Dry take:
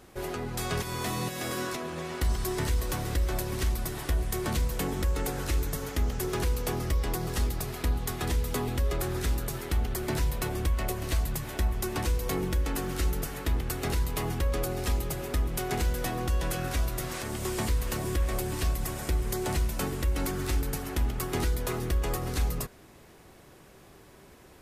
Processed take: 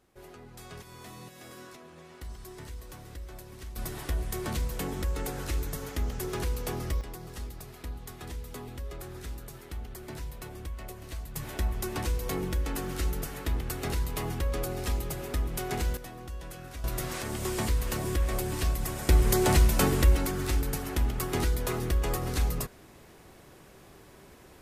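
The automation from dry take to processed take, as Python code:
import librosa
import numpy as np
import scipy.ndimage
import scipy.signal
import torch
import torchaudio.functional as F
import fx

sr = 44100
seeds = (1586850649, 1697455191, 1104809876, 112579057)

y = fx.gain(x, sr, db=fx.steps((0.0, -14.5), (3.76, -3.0), (7.01, -11.0), (11.36, -2.0), (15.97, -12.0), (16.84, 0.0), (19.09, 7.0), (20.16, 0.5)))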